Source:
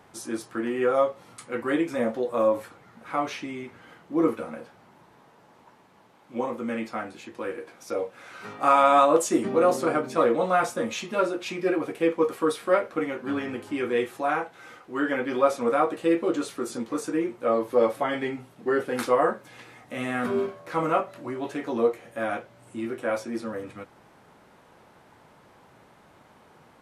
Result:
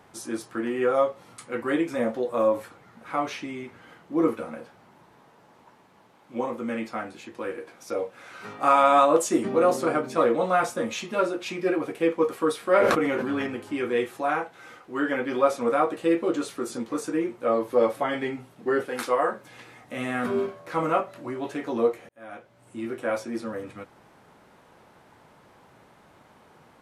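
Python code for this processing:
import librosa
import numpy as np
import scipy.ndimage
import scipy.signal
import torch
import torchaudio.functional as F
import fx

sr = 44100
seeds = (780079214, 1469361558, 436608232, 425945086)

y = fx.sustainer(x, sr, db_per_s=23.0, at=(12.71, 13.47))
y = fx.low_shelf(y, sr, hz=290.0, db=-10.5, at=(18.86, 19.33))
y = fx.edit(y, sr, fx.fade_in_span(start_s=22.09, length_s=0.85), tone=tone)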